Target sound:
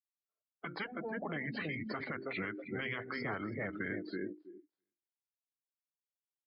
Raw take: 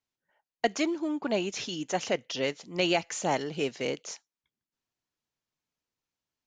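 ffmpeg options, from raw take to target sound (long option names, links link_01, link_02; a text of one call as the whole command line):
ffmpeg -i in.wav -filter_complex "[0:a]bass=frequency=250:gain=-7,treble=frequency=4000:gain=-11,bandreject=frequency=60:width_type=h:width=6,bandreject=frequency=120:width_type=h:width=6,bandreject=frequency=180:width_type=h:width=6,bandreject=frequency=240:width_type=h:width=6,bandreject=frequency=300:width_type=h:width=6,bandreject=frequency=360:width_type=h:width=6,bandreject=frequency=420:width_type=h:width=6,bandreject=frequency=480:width_type=h:width=6,bandreject=frequency=540:width_type=h:width=6,aecho=1:1:323|646|969:0.335|0.0871|0.0226,afftdn=noise_reduction=33:noise_floor=-43,highshelf=frequency=4800:gain=-11,acrossover=split=140|1300[link_01][link_02][link_03];[link_01]highpass=frequency=55:width=0.5412,highpass=frequency=55:width=1.3066[link_04];[link_02]acompressor=threshold=-39dB:ratio=5[link_05];[link_04][link_05][link_03]amix=inputs=3:normalize=0,asetrate=32097,aresample=44100,atempo=1.37395,afftfilt=real='re*lt(hypot(re,im),0.0794)':imag='im*lt(hypot(re,im),0.0794)':win_size=1024:overlap=0.75,alimiter=level_in=11.5dB:limit=-24dB:level=0:latency=1:release=61,volume=-11.5dB,volume=6.5dB" out.wav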